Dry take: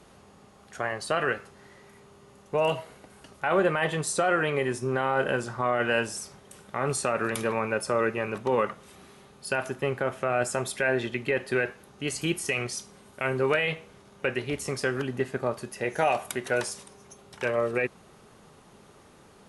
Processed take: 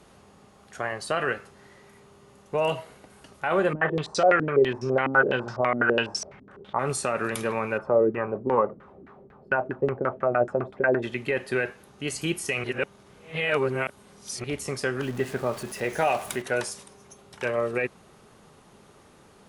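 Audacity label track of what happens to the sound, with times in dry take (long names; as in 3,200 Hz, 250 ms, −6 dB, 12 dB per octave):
3.730000	6.790000	low-pass on a step sequencer 12 Hz 260–5,300 Hz
7.770000	11.020000	auto-filter low-pass saw down 2.2 Hz → 9.9 Hz 260–1,800 Hz
12.640000	14.440000	reverse
15.020000	16.420000	converter with a step at zero of −38 dBFS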